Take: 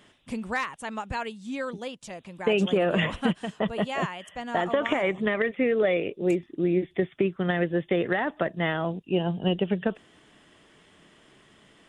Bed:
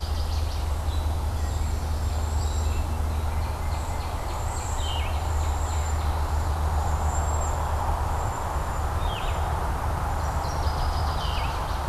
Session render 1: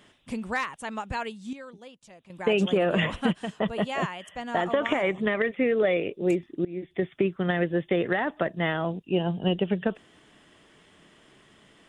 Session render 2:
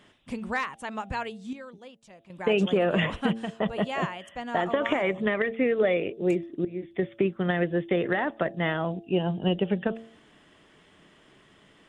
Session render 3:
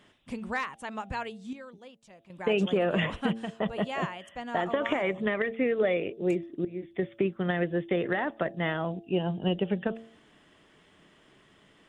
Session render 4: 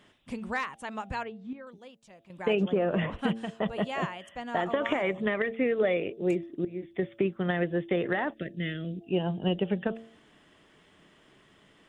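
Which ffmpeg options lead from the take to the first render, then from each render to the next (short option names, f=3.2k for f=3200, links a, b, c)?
-filter_complex "[0:a]asplit=4[a][b][c][d];[a]atrim=end=1.532[e];[b]atrim=start=1.528:end=2.302,asetpts=PTS-STARTPTS,volume=-11dB[f];[c]atrim=start=2.298:end=6.65,asetpts=PTS-STARTPTS,afade=t=out:st=4.348:d=0.004:c=hsin:silence=0.0668344[g];[d]atrim=start=6.65,asetpts=PTS-STARTPTS,afade=t=in:d=0.44:silence=0.0668344[h];[e][f]acrossfade=d=0.004:c1=hsin:c2=hsin[i];[g][h]concat=n=2:v=0:a=1[j];[i][j]acrossfade=d=0.004:c1=hsin:c2=hsin"
-af "highshelf=f=6.1k:g=-6.5,bandreject=f=112.9:t=h:w=4,bandreject=f=225.8:t=h:w=4,bandreject=f=338.7:t=h:w=4,bandreject=f=451.6:t=h:w=4,bandreject=f=564.5:t=h:w=4,bandreject=f=677.4:t=h:w=4,bandreject=f=790.3:t=h:w=4"
-af "volume=-2.5dB"
-filter_complex "[0:a]asettb=1/sr,asplit=3[a][b][c];[a]atrim=end=1.234[d];[b]atrim=start=1.23:end=1.67,asetpts=PTS-STARTPTS,afade=t=in:d=0.004:c=qsin,afade=t=out:st=0.436:d=0.004:c=qsin,lowpass=1.9k[e];[c]atrim=start=1.666[f];[d][e]acrossfade=d=0.004:c1=hsin:c2=qsin[g];[g][f]acrossfade=d=0.004:c1=qsin:c2=hsin,asettb=1/sr,asplit=3[h][i][j];[h]atrim=end=2.554[k];[i]atrim=start=2.55:end=3.19,asetpts=PTS-STARTPTS,afade=t=in:d=0.004:c=qsin,afade=t=out:st=0.636:d=0.004:c=qsin,lowpass=f=1.3k:p=1[l];[j]atrim=start=3.186[m];[k][l]acrossfade=d=0.004:c1=hsin:c2=qsin[n];[n][m]acrossfade=d=0.004:c1=qsin:c2=hsin,asplit=3[o][p][q];[o]afade=t=out:st=8.33:d=0.02[r];[p]asuperstop=centerf=920:order=4:qfactor=0.53,afade=t=in:st=8.33:d=0.02,afade=t=out:st=9:d=0.02[s];[q]afade=t=in:st=9:d=0.02[t];[r][s][t]amix=inputs=3:normalize=0"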